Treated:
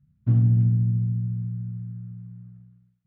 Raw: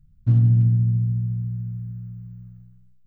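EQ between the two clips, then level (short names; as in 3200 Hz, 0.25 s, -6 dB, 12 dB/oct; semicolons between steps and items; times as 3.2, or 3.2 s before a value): HPF 130 Hz 12 dB/oct; air absorption 390 m; +1.5 dB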